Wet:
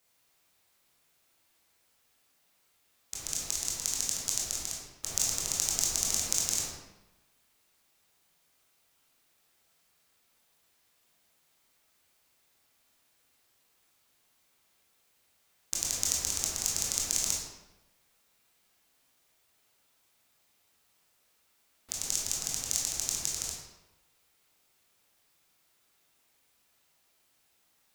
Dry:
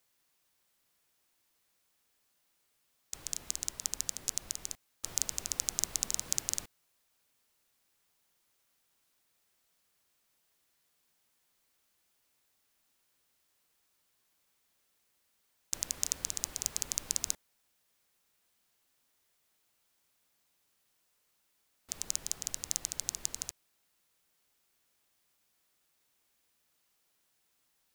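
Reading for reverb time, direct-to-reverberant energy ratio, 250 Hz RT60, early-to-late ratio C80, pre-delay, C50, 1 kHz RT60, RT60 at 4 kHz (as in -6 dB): 1.0 s, -4.0 dB, 1.1 s, 3.5 dB, 18 ms, 0.5 dB, 1.0 s, 0.75 s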